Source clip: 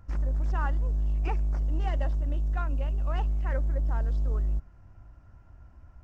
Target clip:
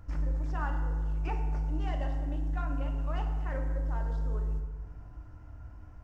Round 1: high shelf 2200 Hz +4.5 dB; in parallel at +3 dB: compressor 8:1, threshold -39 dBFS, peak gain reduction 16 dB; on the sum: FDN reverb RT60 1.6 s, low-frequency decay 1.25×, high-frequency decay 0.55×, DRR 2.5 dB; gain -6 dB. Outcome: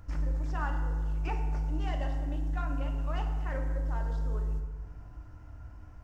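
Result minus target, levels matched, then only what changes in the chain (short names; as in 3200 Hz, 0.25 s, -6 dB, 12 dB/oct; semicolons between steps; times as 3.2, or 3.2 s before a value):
4000 Hz band +3.0 dB
remove: high shelf 2200 Hz +4.5 dB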